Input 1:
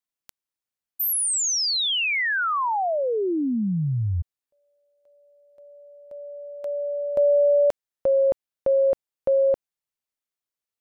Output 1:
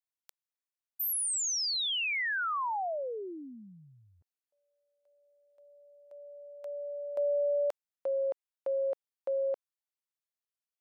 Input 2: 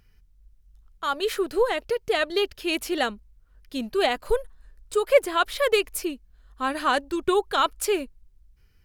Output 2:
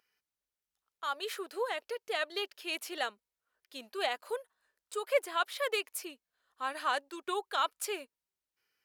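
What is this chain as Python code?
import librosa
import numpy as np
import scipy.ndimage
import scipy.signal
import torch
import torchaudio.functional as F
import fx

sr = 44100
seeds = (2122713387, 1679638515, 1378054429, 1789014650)

y = scipy.signal.sosfilt(scipy.signal.butter(2, 570.0, 'highpass', fs=sr, output='sos'), x)
y = y * 10.0 ** (-8.0 / 20.0)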